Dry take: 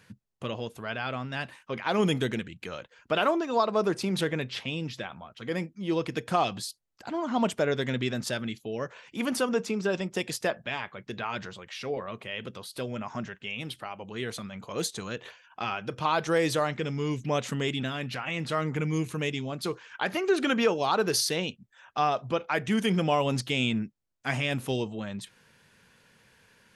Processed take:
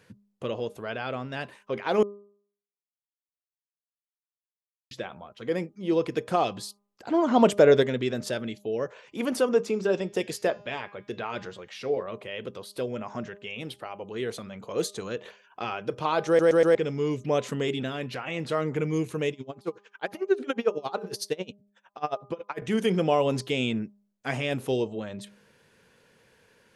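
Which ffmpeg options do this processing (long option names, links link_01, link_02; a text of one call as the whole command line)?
ffmpeg -i in.wav -filter_complex "[0:a]asettb=1/sr,asplit=3[link_01][link_02][link_03];[link_01]atrim=end=7.104[link_04];[link_02]atrim=start=7.1:end=7.83,asetpts=PTS-STARTPTS,afade=type=in:duration=0.004:curve=qsin,afade=type=out:start_time=0.726:duration=0.004:curve=qsin,acontrast=50[link_05];[link_03]atrim=start=7.826[link_06];[link_04][link_05]acrossfade=duration=0.004:curve1=hsin:curve2=qsin[link_07];[link_07][link_06]acrossfade=duration=0.004:curve1=qsin:curve2=hsin,asettb=1/sr,asplit=3[link_08][link_09][link_10];[link_08]atrim=end=9.614[link_11];[link_09]atrim=start=9.61:end=12.03,asetpts=PTS-STARTPTS,afade=type=in:duration=0.004:curve=qsin,afade=type=out:start_time=2.416:duration=0.004:curve=qsin,bandreject=frequency=204.7:width_type=h:width=4,bandreject=frequency=409.4:width_type=h:width=4,bandreject=frequency=614.1:width_type=h:width=4,bandreject=frequency=818.8:width_type=h:width=4,bandreject=frequency=1023.5:width_type=h:width=4,bandreject=frequency=1228.2:width_type=h:width=4,bandreject=frequency=1432.9:width_type=h:width=4,bandreject=frequency=1637.6:width_type=h:width=4,bandreject=frequency=1842.3:width_type=h:width=4,bandreject=frequency=2047:width_type=h:width=4,bandreject=frequency=2251.7:width_type=h:width=4,bandreject=frequency=2456.4:width_type=h:width=4,bandreject=frequency=2661.1:width_type=h:width=4,bandreject=frequency=2865.8:width_type=h:width=4,bandreject=frequency=3070.5:width_type=h:width=4,bandreject=frequency=3275.2:width_type=h:width=4,bandreject=frequency=3479.9:width_type=h:width=4,bandreject=frequency=3684.6:width_type=h:width=4,bandreject=frequency=3889.3:width_type=h:width=4,bandreject=frequency=4094:width_type=h:width=4,bandreject=frequency=4298.7:width_type=h:width=4,bandreject=frequency=4503.4:width_type=h:width=4,bandreject=frequency=4708.1:width_type=h:width=4,bandreject=frequency=4912.8:width_type=h:width=4,bandreject=frequency=5117.5:width_type=h:width=4,bandreject=frequency=5322.2:width_type=h:width=4,bandreject=frequency=5526.9:width_type=h:width=4,bandreject=frequency=5731.6:width_type=h:width=4,bandreject=frequency=5936.3:width_type=h:width=4,bandreject=frequency=6141:width_type=h:width=4,bandreject=frequency=6345.7:width_type=h:width=4,bandreject=frequency=6550.4:width_type=h:width=4,bandreject=frequency=6755.1:width_type=h:width=4,bandreject=frequency=6959.8:width_type=h:width=4[link_12];[link_10]atrim=start=12.026[link_13];[link_11][link_12]acrossfade=duration=0.004:curve1=hsin:curve2=qsin[link_14];[link_14][link_13]acrossfade=duration=0.004:curve1=qsin:curve2=hsin,asettb=1/sr,asplit=3[link_15][link_16][link_17];[link_15]atrim=end=19.324[link_18];[link_16]atrim=start=19.32:end=22.62,asetpts=PTS-STARTPTS,afade=type=in:duration=0.004:curve=qsin,afade=type=out:start_time=3.296:duration=0.004:curve=qsin,aeval=exprs='val(0)*pow(10,-28*(0.5-0.5*cos(2*PI*11*n/s))/20)':channel_layout=same[link_19];[link_17]atrim=start=22.616[link_20];[link_18][link_19]acrossfade=duration=0.004:curve1=hsin:curve2=qsin[link_21];[link_21][link_20]acrossfade=duration=0.004:curve1=qsin:curve2=hsin,asplit=7[link_22][link_23][link_24][link_25][link_26][link_27][link_28];[link_22]atrim=end=2.03,asetpts=PTS-STARTPTS,afade=type=out:start_time=2.026:duration=0.004:curve=hsin[link_29];[link_23]atrim=start=2.03:end=4.91,asetpts=PTS-STARTPTS,volume=0[link_30];[link_24]atrim=start=4.91:end=16.392,asetpts=PTS-STARTPTS,afade=type=in:duration=0.004:curve=hsin[link_31];[link_25]atrim=start=16.268:end=16.392[link_32];[link_26]atrim=start=16.268:end=16.392[link_33];[link_27]atrim=start=16.268:end=16.392[link_34];[link_28]atrim=start=16.748[link_35];[link_29][link_30][link_31]concat=n=3:v=0:a=1[link_36];[link_36][link_32]acrossfade=duration=0.004:curve1=hsin:curve2=hsin[link_37];[link_37][link_33]acrossfade=duration=0.004:curve1=hsin:curve2=hsin[link_38];[link_38][link_34]acrossfade=duration=0.004:curve1=hsin:curve2=hsin[link_39];[link_39][link_35]acrossfade=duration=0.004:curve1=hsin:curve2=hsin,equalizer=frequency=450:width_type=o:width=1.2:gain=8.5,bandreject=frequency=203:width_type=h:width=4,bandreject=frequency=406:width_type=h:width=4,bandreject=frequency=609:width_type=h:width=4,bandreject=frequency=812:width_type=h:width=4,bandreject=frequency=1015:width_type=h:width=4,bandreject=frequency=1218:width_type=h:width=4,volume=-2.5dB" out.wav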